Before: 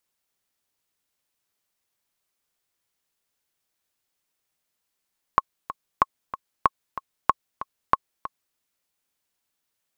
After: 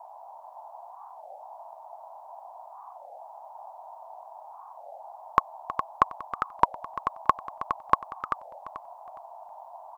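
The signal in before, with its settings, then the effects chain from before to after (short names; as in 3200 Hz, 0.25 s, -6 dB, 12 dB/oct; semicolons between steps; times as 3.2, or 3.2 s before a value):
metronome 188 bpm, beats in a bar 2, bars 5, 1090 Hz, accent 14 dB -3 dBFS
band noise 640–980 Hz -46 dBFS; on a send: feedback echo 0.413 s, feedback 26%, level -8 dB; on the sum: record warp 33 1/3 rpm, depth 250 cents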